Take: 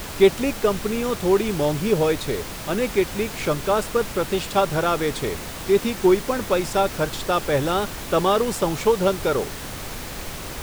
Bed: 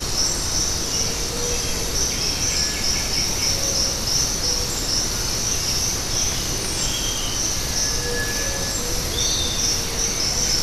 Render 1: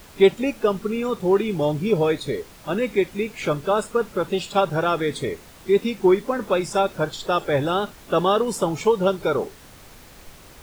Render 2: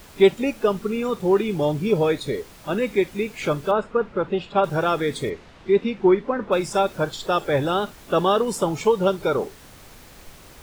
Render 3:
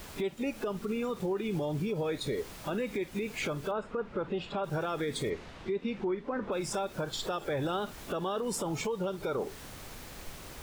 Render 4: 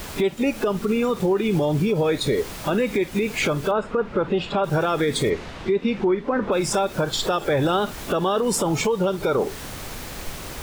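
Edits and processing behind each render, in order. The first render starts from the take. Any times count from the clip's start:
noise print and reduce 13 dB
3.71–4.64 s: low-pass 2.4 kHz; 5.29–6.51 s: low-pass 4.2 kHz -> 2.3 kHz
compression 6:1, threshold -26 dBFS, peak gain reduction 15.5 dB; peak limiter -24.5 dBFS, peak gain reduction 8.5 dB
trim +11.5 dB

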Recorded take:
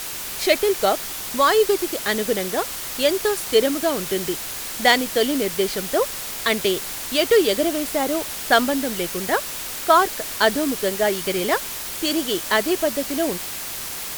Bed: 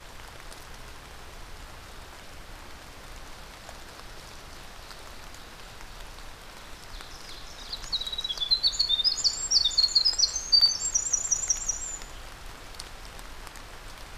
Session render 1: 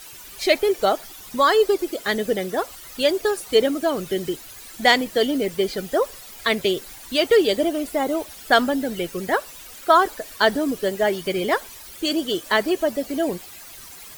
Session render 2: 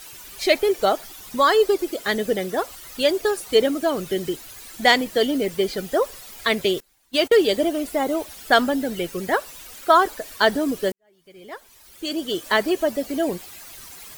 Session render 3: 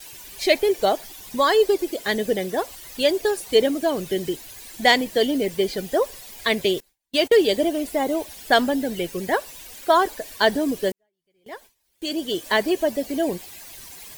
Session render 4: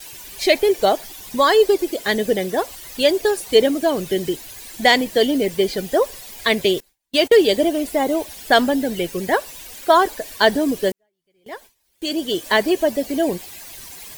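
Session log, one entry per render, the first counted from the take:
noise reduction 14 dB, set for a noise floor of -31 dBFS
6.80–7.47 s: gate -29 dBFS, range -23 dB; 10.92–12.46 s: fade in quadratic
gate with hold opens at -35 dBFS; peaking EQ 1.3 kHz -9.5 dB 0.27 oct
trim +3.5 dB; peak limiter -2 dBFS, peak gain reduction 2.5 dB

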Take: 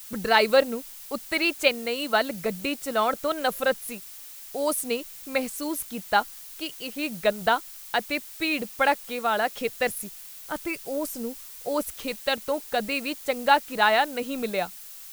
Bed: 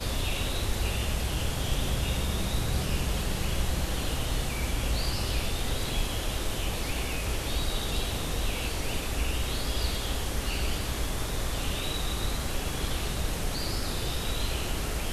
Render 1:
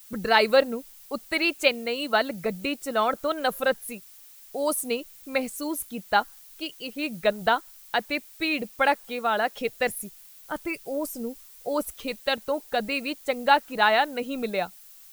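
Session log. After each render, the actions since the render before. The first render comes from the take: noise reduction 8 dB, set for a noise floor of -43 dBFS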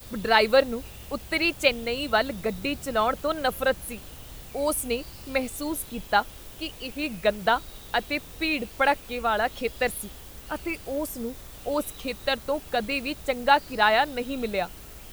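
add bed -14.5 dB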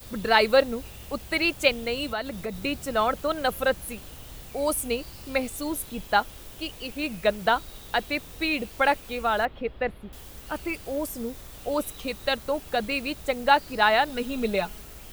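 2.08–2.55 s: compression 2.5:1, threshold -29 dBFS; 9.45–10.13 s: distance through air 480 m; 14.09–14.82 s: comb 4.8 ms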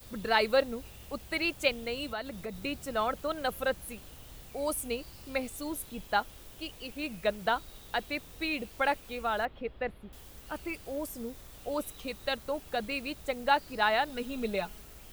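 trim -6.5 dB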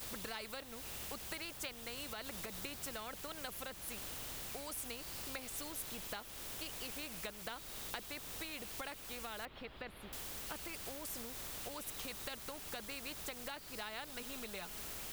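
compression, threshold -39 dBFS, peak gain reduction 18 dB; spectrum-flattening compressor 2:1

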